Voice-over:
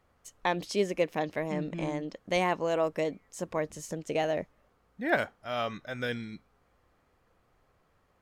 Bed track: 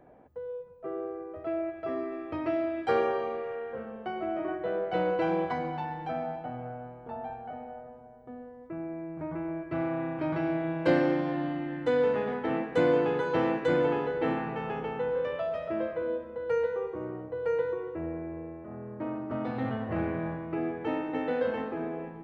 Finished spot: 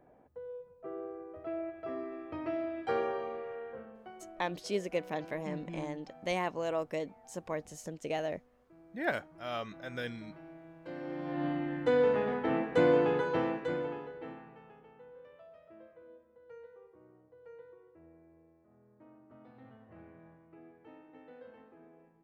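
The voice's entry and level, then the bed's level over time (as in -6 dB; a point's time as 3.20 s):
3.95 s, -5.5 dB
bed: 3.69 s -6 dB
4.46 s -21.5 dB
10.88 s -21.5 dB
11.46 s -1 dB
13.15 s -1 dB
14.80 s -23.5 dB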